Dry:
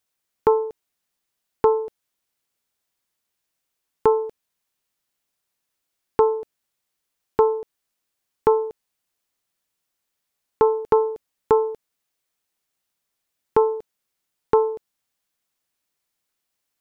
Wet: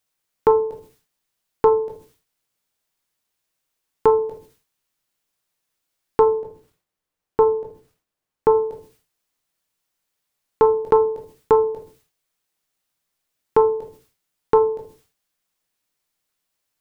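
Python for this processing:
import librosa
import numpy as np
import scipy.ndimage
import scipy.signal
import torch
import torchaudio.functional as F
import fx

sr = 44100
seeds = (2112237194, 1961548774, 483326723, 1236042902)

y = fx.high_shelf(x, sr, hz=fx.line((6.39, 2100.0), (8.54, 2100.0)), db=-9.5, at=(6.39, 8.54), fade=0.02)
y = fx.room_shoebox(y, sr, seeds[0], volume_m3=140.0, walls='furnished', distance_m=0.53)
y = fx.sustainer(y, sr, db_per_s=130.0)
y = F.gain(torch.from_numpy(y), 1.0).numpy()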